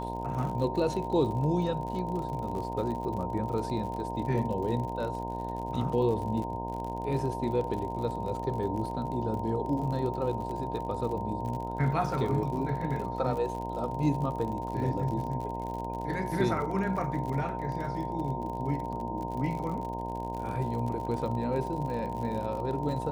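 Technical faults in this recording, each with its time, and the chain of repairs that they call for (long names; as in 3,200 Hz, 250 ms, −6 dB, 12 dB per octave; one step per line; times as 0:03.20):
mains buzz 60 Hz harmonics 17 −37 dBFS
surface crackle 55 per second −36 dBFS
whistle 920 Hz −36 dBFS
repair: click removal
hum removal 60 Hz, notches 17
notch filter 920 Hz, Q 30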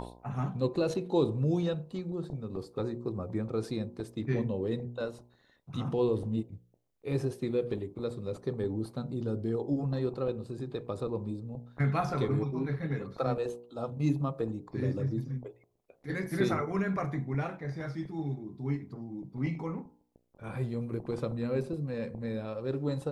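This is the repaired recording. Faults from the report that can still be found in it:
none of them is left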